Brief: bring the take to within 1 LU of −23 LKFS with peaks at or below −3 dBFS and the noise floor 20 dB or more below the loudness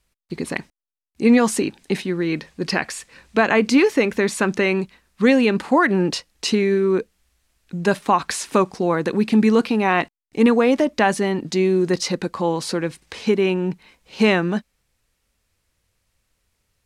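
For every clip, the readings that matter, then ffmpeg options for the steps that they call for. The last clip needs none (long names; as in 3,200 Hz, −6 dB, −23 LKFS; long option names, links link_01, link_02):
integrated loudness −20.0 LKFS; sample peak −5.5 dBFS; target loudness −23.0 LKFS
→ -af "volume=-3dB"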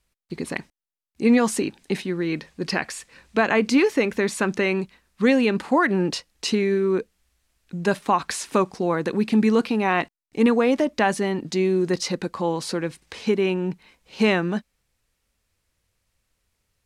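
integrated loudness −23.0 LKFS; sample peak −8.5 dBFS; background noise floor −76 dBFS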